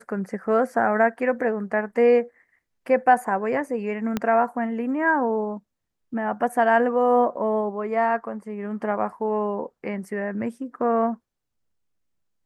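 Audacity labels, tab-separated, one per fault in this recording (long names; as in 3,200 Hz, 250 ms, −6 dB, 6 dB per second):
4.170000	4.170000	click −11 dBFS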